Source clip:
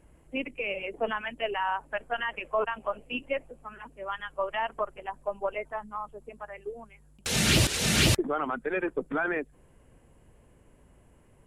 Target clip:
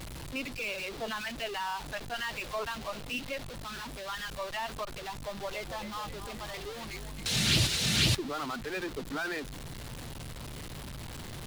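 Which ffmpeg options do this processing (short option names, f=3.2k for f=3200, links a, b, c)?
-filter_complex "[0:a]aeval=exprs='val(0)+0.5*0.0355*sgn(val(0))':c=same,equalizer=f=125:t=o:w=1:g=5,equalizer=f=500:t=o:w=1:g=-3,equalizer=f=4k:t=o:w=1:g=8,asettb=1/sr,asplit=3[a][b][c];[a]atrim=end=5.144[d];[b]atrim=start=5.14:end=7.76,asetpts=PTS-STARTPTS,afade=t=in:d=0.004:c=qsin,afade=t=out:st=2.616:d=0.004:c=qsin,asplit=8[e][f][g][h][i][j][k][l];[f]adelay=266,afreqshift=-51,volume=-9.5dB[m];[g]adelay=532,afreqshift=-102,volume=-14.5dB[n];[h]adelay=798,afreqshift=-153,volume=-19.6dB[o];[i]adelay=1064,afreqshift=-204,volume=-24.6dB[p];[j]adelay=1330,afreqshift=-255,volume=-29.6dB[q];[k]adelay=1596,afreqshift=-306,volume=-34.7dB[r];[l]adelay=1862,afreqshift=-357,volume=-39.7dB[s];[e][m][n][o][p][q][r][s]amix=inputs=8:normalize=0,atrim=end_sample=115542[t];[c]atrim=start=7.756[u];[d][t]acrossfade=d=0.004:c1=hsin:c2=qsin[v];[v][u]acrossfade=d=0.004:c1=qsin:c2=hsin,volume=-8.5dB"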